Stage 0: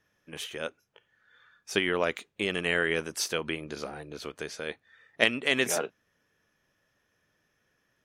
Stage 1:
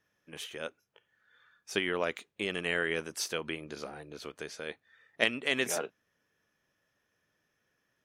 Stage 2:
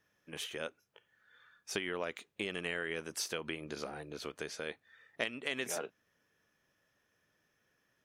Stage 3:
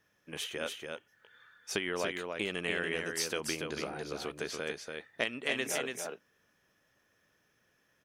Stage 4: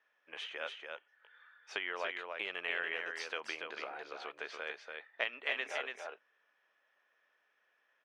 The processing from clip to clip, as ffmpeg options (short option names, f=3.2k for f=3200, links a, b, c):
-af "lowshelf=f=73:g=-6,volume=-4dB"
-af "acompressor=threshold=-36dB:ratio=3,volume=1dB"
-af "aecho=1:1:286:0.596,volume=3dB"
-af "asuperpass=centerf=1400:order=4:qfactor=0.56,volume=-1dB"